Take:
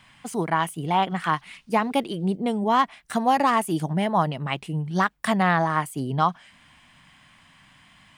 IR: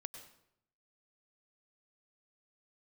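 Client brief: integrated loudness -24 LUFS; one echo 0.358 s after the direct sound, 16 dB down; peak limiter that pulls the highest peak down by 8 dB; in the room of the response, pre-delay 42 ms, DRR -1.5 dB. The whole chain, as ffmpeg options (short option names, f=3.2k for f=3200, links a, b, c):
-filter_complex "[0:a]alimiter=limit=-17.5dB:level=0:latency=1,aecho=1:1:358:0.158,asplit=2[a][b];[1:a]atrim=start_sample=2205,adelay=42[c];[b][c]afir=irnorm=-1:irlink=0,volume=5.5dB[d];[a][d]amix=inputs=2:normalize=0,volume=0.5dB"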